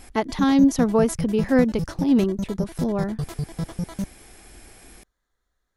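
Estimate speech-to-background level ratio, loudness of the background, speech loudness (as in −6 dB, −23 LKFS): 9.5 dB, −31.5 LKFS, −22.0 LKFS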